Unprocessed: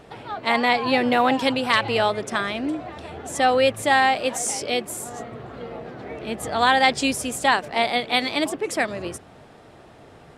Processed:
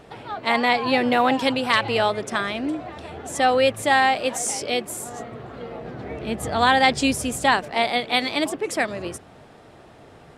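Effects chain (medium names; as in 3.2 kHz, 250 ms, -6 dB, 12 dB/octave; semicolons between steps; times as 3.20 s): 5.84–7.64 s: bass shelf 170 Hz +9 dB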